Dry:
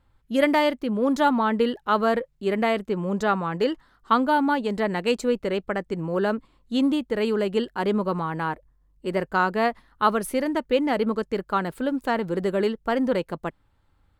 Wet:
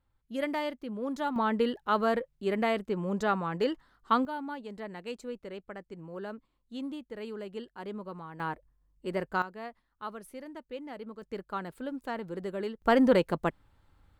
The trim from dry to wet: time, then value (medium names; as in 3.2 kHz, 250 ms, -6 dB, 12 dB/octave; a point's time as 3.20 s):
-12 dB
from 1.36 s -5.5 dB
from 4.25 s -16 dB
from 8.40 s -7 dB
from 9.42 s -19 dB
from 11.22 s -11.5 dB
from 12.82 s +1 dB